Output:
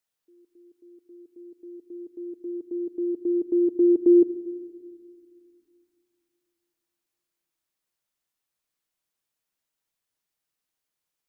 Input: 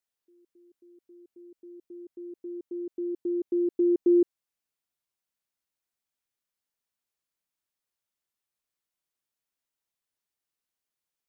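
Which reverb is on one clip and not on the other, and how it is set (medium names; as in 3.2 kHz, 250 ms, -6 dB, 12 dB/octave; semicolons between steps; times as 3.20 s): simulated room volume 3700 m³, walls mixed, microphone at 0.56 m; trim +3.5 dB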